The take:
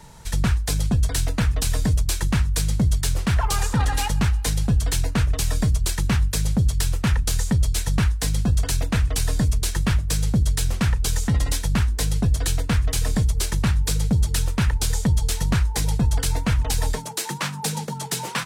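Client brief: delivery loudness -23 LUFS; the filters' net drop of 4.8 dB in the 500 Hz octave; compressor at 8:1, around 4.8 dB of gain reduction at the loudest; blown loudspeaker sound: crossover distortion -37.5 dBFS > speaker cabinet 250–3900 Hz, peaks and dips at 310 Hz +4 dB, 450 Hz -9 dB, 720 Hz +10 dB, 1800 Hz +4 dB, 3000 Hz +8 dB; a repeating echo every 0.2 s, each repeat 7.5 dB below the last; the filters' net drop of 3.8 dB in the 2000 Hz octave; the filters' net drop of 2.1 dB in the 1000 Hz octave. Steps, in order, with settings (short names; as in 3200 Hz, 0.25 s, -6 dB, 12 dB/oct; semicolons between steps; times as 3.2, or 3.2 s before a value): bell 500 Hz -4.5 dB; bell 1000 Hz -4.5 dB; bell 2000 Hz -7.5 dB; compressor 8:1, threshold -20 dBFS; feedback echo 0.2 s, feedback 42%, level -7.5 dB; crossover distortion -37.5 dBFS; speaker cabinet 250–3900 Hz, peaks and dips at 310 Hz +4 dB, 450 Hz -9 dB, 720 Hz +10 dB, 1800 Hz +4 dB, 3000 Hz +8 dB; gain +12.5 dB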